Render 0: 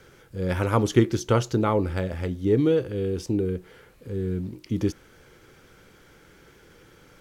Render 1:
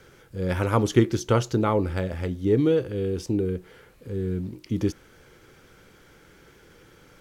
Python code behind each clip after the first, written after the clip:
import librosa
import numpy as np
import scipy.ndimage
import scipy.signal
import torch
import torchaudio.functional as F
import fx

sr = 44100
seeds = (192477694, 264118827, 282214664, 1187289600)

y = x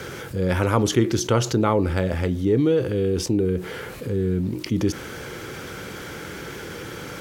y = scipy.signal.sosfilt(scipy.signal.butter(2, 73.0, 'highpass', fs=sr, output='sos'), x)
y = fx.env_flatten(y, sr, amount_pct=50)
y = y * 10.0 ** (-1.5 / 20.0)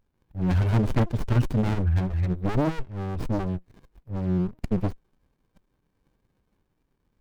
y = fx.bin_expand(x, sr, power=3.0)
y = fx.leveller(y, sr, passes=2)
y = fx.running_max(y, sr, window=65)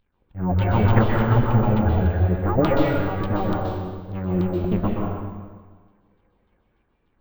y = fx.filter_lfo_lowpass(x, sr, shape='saw_down', hz=3.4, low_hz=380.0, high_hz=3800.0, q=3.8)
y = fx.rev_plate(y, sr, seeds[0], rt60_s=1.5, hf_ratio=0.85, predelay_ms=115, drr_db=-2.5)
y = np.repeat(y[::2], 2)[:len(y)]